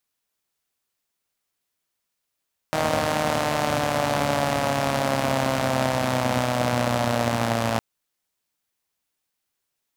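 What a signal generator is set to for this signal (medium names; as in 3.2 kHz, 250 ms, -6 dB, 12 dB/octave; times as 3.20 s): four-cylinder engine model, changing speed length 5.06 s, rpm 4700, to 3400, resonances 120/230/590 Hz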